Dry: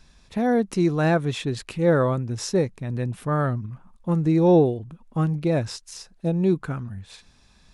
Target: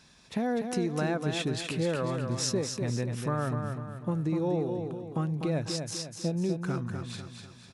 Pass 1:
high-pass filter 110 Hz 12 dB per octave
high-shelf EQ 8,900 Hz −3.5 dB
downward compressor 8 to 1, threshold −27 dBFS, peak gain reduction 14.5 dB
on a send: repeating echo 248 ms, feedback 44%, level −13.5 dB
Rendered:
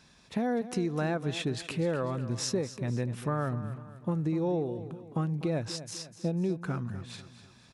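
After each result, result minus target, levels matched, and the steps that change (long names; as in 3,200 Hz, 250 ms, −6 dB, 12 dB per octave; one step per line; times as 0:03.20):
echo-to-direct −7.5 dB; 8,000 Hz band −2.5 dB
change: repeating echo 248 ms, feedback 44%, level −6 dB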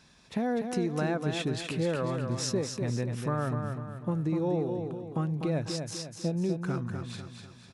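8,000 Hz band −2.5 dB
add after downward compressor: high-shelf EQ 3,300 Hz +3.5 dB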